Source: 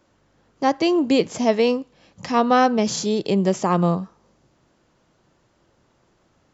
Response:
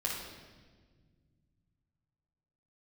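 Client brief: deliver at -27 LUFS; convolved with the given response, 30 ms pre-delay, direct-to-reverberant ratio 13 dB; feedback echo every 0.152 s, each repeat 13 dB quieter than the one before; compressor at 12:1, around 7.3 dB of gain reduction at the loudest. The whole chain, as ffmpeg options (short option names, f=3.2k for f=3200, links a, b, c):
-filter_complex "[0:a]acompressor=threshold=-19dB:ratio=12,aecho=1:1:152|304|456:0.224|0.0493|0.0108,asplit=2[a][b];[1:a]atrim=start_sample=2205,adelay=30[c];[b][c]afir=irnorm=-1:irlink=0,volume=-17.5dB[d];[a][d]amix=inputs=2:normalize=0,volume=-2dB"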